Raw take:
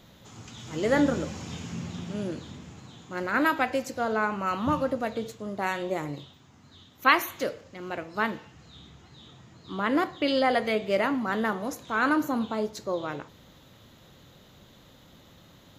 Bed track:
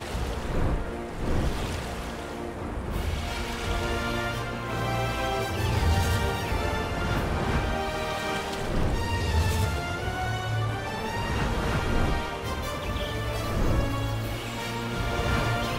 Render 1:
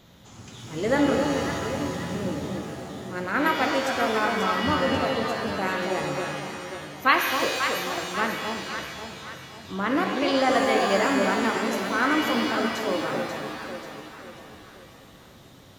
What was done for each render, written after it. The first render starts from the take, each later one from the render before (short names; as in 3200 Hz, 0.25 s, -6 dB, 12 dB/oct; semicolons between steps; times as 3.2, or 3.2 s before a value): echo with dull and thin repeats by turns 0.269 s, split 950 Hz, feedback 68%, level -3.5 dB; shimmer reverb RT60 1.5 s, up +7 st, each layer -2 dB, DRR 5.5 dB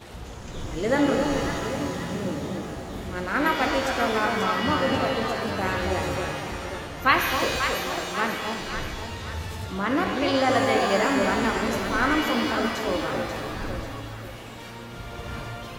add bed track -9 dB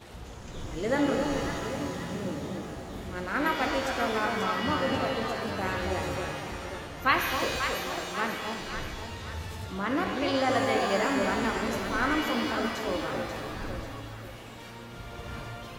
gain -4.5 dB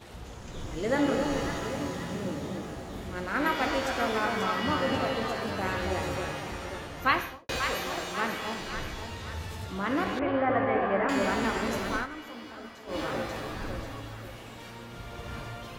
7.06–7.49 studio fade out; 10.19–11.09 LPF 2100 Hz 24 dB/oct; 11.95–12.99 dip -14 dB, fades 0.12 s